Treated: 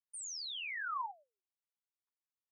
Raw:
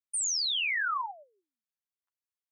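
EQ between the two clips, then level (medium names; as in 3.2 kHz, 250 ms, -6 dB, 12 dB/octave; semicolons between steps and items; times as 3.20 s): band-pass filter 900 Hz, Q 2.7; differentiator; +13.5 dB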